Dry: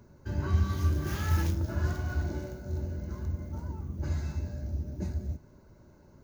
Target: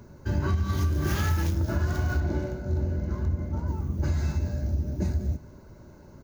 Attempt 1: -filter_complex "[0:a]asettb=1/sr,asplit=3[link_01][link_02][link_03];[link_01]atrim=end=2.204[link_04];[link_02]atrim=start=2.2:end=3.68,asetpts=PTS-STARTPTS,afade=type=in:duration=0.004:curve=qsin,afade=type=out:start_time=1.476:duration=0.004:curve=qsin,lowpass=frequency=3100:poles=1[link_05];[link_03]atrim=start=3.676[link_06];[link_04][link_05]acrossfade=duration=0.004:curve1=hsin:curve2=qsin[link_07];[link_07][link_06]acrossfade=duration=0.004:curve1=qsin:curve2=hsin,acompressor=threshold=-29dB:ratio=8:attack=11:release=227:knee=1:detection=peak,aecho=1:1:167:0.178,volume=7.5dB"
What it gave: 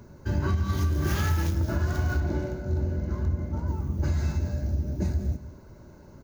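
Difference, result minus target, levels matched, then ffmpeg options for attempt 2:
echo-to-direct +11 dB
-filter_complex "[0:a]asettb=1/sr,asplit=3[link_01][link_02][link_03];[link_01]atrim=end=2.204[link_04];[link_02]atrim=start=2.2:end=3.68,asetpts=PTS-STARTPTS,afade=type=in:duration=0.004:curve=qsin,afade=type=out:start_time=1.476:duration=0.004:curve=qsin,lowpass=frequency=3100:poles=1[link_05];[link_03]atrim=start=3.676[link_06];[link_04][link_05]acrossfade=duration=0.004:curve1=hsin:curve2=qsin[link_07];[link_07][link_06]acrossfade=duration=0.004:curve1=qsin:curve2=hsin,acompressor=threshold=-29dB:ratio=8:attack=11:release=227:knee=1:detection=peak,aecho=1:1:167:0.0501,volume=7.5dB"

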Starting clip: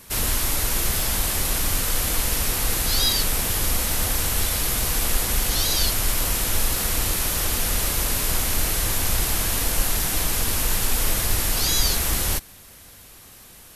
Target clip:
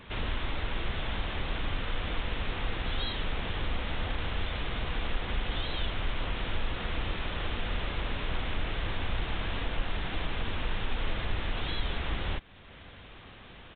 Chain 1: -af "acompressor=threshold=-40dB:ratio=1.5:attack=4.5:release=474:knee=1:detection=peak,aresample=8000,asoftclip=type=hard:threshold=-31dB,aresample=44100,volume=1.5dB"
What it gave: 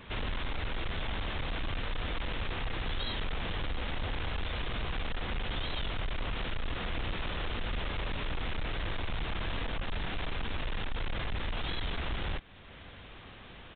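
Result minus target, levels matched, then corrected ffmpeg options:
hard clipping: distortion +33 dB
-af "acompressor=threshold=-40dB:ratio=1.5:attack=4.5:release=474:knee=1:detection=peak,aresample=8000,asoftclip=type=hard:threshold=-21dB,aresample=44100,volume=1.5dB"

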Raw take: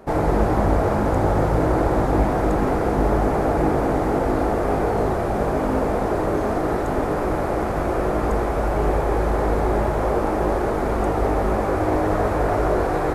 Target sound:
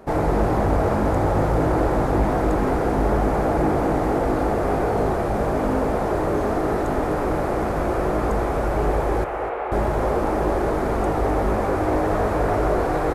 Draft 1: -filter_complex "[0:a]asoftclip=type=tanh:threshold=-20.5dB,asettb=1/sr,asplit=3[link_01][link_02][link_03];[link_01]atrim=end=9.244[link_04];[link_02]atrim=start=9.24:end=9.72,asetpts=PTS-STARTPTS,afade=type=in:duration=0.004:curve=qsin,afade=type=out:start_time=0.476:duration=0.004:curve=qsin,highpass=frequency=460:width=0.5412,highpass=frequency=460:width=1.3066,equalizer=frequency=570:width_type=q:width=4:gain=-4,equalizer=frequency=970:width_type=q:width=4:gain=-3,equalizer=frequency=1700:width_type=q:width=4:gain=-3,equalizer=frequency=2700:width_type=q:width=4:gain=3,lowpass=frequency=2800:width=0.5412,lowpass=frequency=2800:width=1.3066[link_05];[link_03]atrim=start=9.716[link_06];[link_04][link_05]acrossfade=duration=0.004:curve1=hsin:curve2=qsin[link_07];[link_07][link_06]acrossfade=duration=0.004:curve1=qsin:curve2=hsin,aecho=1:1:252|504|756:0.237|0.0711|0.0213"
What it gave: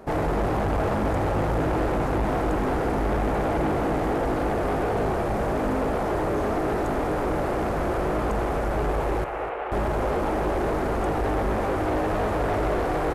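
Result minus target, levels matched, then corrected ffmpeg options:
soft clipping: distortion +13 dB
-filter_complex "[0:a]asoftclip=type=tanh:threshold=-9.5dB,asettb=1/sr,asplit=3[link_01][link_02][link_03];[link_01]atrim=end=9.244[link_04];[link_02]atrim=start=9.24:end=9.72,asetpts=PTS-STARTPTS,afade=type=in:duration=0.004:curve=qsin,afade=type=out:start_time=0.476:duration=0.004:curve=qsin,highpass=frequency=460:width=0.5412,highpass=frequency=460:width=1.3066,equalizer=frequency=570:width_type=q:width=4:gain=-4,equalizer=frequency=970:width_type=q:width=4:gain=-3,equalizer=frequency=1700:width_type=q:width=4:gain=-3,equalizer=frequency=2700:width_type=q:width=4:gain=3,lowpass=frequency=2800:width=0.5412,lowpass=frequency=2800:width=1.3066[link_05];[link_03]atrim=start=9.716[link_06];[link_04][link_05]acrossfade=duration=0.004:curve1=hsin:curve2=qsin[link_07];[link_07][link_06]acrossfade=duration=0.004:curve1=qsin:curve2=hsin,aecho=1:1:252|504|756:0.237|0.0711|0.0213"

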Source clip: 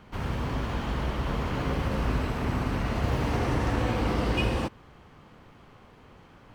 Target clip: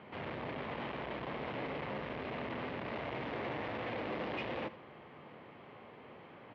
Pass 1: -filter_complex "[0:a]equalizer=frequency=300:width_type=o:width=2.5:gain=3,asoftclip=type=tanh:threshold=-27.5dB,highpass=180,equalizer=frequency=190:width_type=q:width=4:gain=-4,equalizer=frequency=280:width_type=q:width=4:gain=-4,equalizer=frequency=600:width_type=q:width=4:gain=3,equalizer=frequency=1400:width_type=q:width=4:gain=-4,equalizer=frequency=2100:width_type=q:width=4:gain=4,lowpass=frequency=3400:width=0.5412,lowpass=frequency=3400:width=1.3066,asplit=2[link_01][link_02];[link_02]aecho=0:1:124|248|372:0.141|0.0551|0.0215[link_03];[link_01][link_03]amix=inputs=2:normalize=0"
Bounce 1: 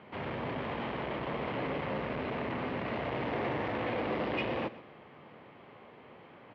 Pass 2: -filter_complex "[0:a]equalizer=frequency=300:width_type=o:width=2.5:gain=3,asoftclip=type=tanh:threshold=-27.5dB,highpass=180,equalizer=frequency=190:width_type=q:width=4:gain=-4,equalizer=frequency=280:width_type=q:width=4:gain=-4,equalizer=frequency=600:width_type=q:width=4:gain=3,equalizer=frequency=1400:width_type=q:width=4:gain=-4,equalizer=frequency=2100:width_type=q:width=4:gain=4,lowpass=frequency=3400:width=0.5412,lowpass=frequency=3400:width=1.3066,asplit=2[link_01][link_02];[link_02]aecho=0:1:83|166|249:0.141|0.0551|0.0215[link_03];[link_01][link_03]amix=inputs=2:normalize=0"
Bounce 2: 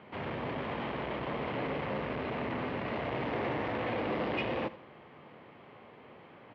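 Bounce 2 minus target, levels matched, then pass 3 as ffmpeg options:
soft clipping: distortion −4 dB
-filter_complex "[0:a]equalizer=frequency=300:width_type=o:width=2.5:gain=3,asoftclip=type=tanh:threshold=-35.5dB,highpass=180,equalizer=frequency=190:width_type=q:width=4:gain=-4,equalizer=frequency=280:width_type=q:width=4:gain=-4,equalizer=frequency=600:width_type=q:width=4:gain=3,equalizer=frequency=1400:width_type=q:width=4:gain=-4,equalizer=frequency=2100:width_type=q:width=4:gain=4,lowpass=frequency=3400:width=0.5412,lowpass=frequency=3400:width=1.3066,asplit=2[link_01][link_02];[link_02]aecho=0:1:83|166|249:0.141|0.0551|0.0215[link_03];[link_01][link_03]amix=inputs=2:normalize=0"

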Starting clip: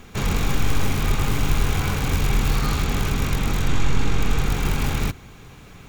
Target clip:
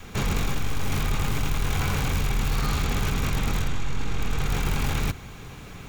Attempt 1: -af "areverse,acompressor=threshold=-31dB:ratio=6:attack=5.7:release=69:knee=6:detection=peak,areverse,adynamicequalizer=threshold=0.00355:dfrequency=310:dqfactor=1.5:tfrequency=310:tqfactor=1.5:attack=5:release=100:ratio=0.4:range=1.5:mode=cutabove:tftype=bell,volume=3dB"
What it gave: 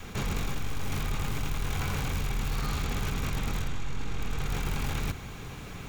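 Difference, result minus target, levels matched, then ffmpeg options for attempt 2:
downward compressor: peak gain reduction +6 dB
-af "areverse,acompressor=threshold=-24dB:ratio=6:attack=5.7:release=69:knee=6:detection=peak,areverse,adynamicequalizer=threshold=0.00355:dfrequency=310:dqfactor=1.5:tfrequency=310:tqfactor=1.5:attack=5:release=100:ratio=0.4:range=1.5:mode=cutabove:tftype=bell,volume=3dB"

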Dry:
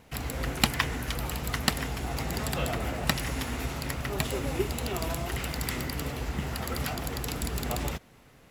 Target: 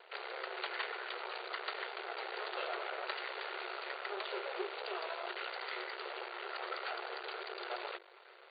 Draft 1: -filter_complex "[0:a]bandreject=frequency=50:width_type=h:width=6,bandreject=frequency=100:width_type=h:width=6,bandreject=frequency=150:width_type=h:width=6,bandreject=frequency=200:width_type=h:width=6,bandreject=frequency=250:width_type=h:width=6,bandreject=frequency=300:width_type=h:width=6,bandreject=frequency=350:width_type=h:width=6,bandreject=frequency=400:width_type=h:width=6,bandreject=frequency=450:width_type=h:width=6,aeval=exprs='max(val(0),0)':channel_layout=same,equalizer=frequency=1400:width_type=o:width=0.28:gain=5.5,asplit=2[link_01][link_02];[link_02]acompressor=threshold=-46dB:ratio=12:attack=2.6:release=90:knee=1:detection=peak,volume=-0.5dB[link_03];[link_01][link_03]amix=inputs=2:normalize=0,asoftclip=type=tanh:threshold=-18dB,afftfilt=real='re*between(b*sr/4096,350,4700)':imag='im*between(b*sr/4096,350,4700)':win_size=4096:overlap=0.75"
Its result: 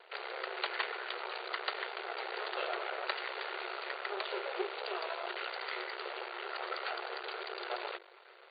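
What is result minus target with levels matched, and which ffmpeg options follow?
downward compressor: peak gain reduction −8 dB; soft clipping: distortion −5 dB
-filter_complex "[0:a]bandreject=frequency=50:width_type=h:width=6,bandreject=frequency=100:width_type=h:width=6,bandreject=frequency=150:width_type=h:width=6,bandreject=frequency=200:width_type=h:width=6,bandreject=frequency=250:width_type=h:width=6,bandreject=frequency=300:width_type=h:width=6,bandreject=frequency=350:width_type=h:width=6,bandreject=frequency=400:width_type=h:width=6,bandreject=frequency=450:width_type=h:width=6,aeval=exprs='max(val(0),0)':channel_layout=same,equalizer=frequency=1400:width_type=o:width=0.28:gain=5.5,asplit=2[link_01][link_02];[link_02]acompressor=threshold=-54.5dB:ratio=12:attack=2.6:release=90:knee=1:detection=peak,volume=-0.5dB[link_03];[link_01][link_03]amix=inputs=2:normalize=0,asoftclip=type=tanh:threshold=-26dB,afftfilt=real='re*between(b*sr/4096,350,4700)':imag='im*between(b*sr/4096,350,4700)':win_size=4096:overlap=0.75"

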